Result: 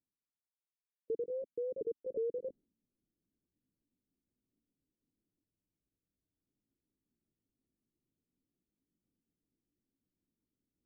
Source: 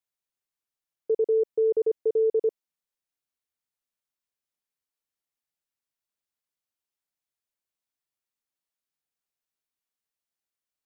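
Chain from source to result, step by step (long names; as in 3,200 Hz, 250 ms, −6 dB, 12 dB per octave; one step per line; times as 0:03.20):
pitch shifter swept by a sawtooth +3.5 semitones, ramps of 362 ms
noise gate with hold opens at −38 dBFS
reversed playback
upward compression, threshold −39 dBFS
reversed playback
transistor ladder low-pass 330 Hz, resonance 45%
frozen spectrum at 0:05.48, 0.98 s
level +5 dB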